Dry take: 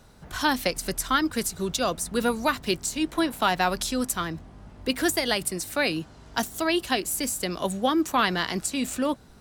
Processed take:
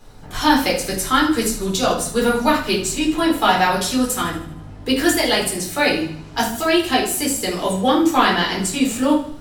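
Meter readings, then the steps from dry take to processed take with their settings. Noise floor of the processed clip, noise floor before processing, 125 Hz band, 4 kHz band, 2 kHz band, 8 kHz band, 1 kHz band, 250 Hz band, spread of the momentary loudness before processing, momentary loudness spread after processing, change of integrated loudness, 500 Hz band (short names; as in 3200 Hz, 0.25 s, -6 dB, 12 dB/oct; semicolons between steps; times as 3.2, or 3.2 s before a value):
-37 dBFS, -50 dBFS, +7.0 dB, +7.5 dB, +7.0 dB, +6.0 dB, +8.0 dB, +8.5 dB, 6 LU, 7 LU, +7.5 dB, +8.0 dB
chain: notches 60/120/180/240 Hz; thinning echo 77 ms, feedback 50%, level -13 dB; shoebox room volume 270 m³, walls furnished, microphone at 4 m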